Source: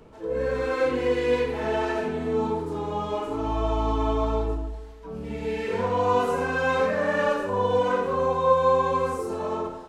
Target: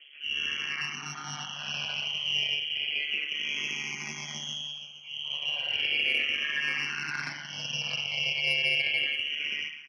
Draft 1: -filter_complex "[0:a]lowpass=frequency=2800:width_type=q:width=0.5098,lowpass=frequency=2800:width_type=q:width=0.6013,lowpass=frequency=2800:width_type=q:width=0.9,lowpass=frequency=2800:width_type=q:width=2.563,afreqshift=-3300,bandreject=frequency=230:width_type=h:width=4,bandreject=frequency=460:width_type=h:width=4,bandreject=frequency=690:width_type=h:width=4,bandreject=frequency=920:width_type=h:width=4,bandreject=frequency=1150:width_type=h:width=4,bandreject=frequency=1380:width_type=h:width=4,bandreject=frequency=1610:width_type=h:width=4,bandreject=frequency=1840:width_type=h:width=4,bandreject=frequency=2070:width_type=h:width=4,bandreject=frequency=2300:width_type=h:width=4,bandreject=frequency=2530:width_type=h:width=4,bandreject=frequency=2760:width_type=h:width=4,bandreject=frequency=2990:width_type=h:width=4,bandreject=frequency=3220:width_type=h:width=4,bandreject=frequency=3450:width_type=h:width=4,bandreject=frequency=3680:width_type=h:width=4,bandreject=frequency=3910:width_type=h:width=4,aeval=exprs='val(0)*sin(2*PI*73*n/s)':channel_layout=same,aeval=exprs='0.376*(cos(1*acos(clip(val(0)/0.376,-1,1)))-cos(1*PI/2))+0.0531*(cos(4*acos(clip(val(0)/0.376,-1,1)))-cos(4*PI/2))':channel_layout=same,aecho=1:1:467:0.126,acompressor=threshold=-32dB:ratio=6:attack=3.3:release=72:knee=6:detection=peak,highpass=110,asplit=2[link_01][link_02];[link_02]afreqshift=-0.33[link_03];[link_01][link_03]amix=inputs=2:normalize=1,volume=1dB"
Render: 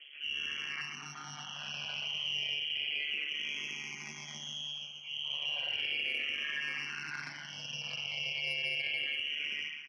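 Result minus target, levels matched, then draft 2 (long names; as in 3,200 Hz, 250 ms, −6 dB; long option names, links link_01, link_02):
downward compressor: peak gain reduction +9 dB
-filter_complex "[0:a]lowpass=frequency=2800:width_type=q:width=0.5098,lowpass=frequency=2800:width_type=q:width=0.6013,lowpass=frequency=2800:width_type=q:width=0.9,lowpass=frequency=2800:width_type=q:width=2.563,afreqshift=-3300,bandreject=frequency=230:width_type=h:width=4,bandreject=frequency=460:width_type=h:width=4,bandreject=frequency=690:width_type=h:width=4,bandreject=frequency=920:width_type=h:width=4,bandreject=frequency=1150:width_type=h:width=4,bandreject=frequency=1380:width_type=h:width=4,bandreject=frequency=1610:width_type=h:width=4,bandreject=frequency=1840:width_type=h:width=4,bandreject=frequency=2070:width_type=h:width=4,bandreject=frequency=2300:width_type=h:width=4,bandreject=frequency=2530:width_type=h:width=4,bandreject=frequency=2760:width_type=h:width=4,bandreject=frequency=2990:width_type=h:width=4,bandreject=frequency=3220:width_type=h:width=4,bandreject=frequency=3450:width_type=h:width=4,bandreject=frequency=3680:width_type=h:width=4,bandreject=frequency=3910:width_type=h:width=4,aeval=exprs='val(0)*sin(2*PI*73*n/s)':channel_layout=same,aeval=exprs='0.376*(cos(1*acos(clip(val(0)/0.376,-1,1)))-cos(1*PI/2))+0.0531*(cos(4*acos(clip(val(0)/0.376,-1,1)))-cos(4*PI/2))':channel_layout=same,aecho=1:1:467:0.126,acompressor=threshold=-21.5dB:ratio=6:attack=3.3:release=72:knee=6:detection=peak,highpass=110,asplit=2[link_01][link_02];[link_02]afreqshift=-0.33[link_03];[link_01][link_03]amix=inputs=2:normalize=1,volume=1dB"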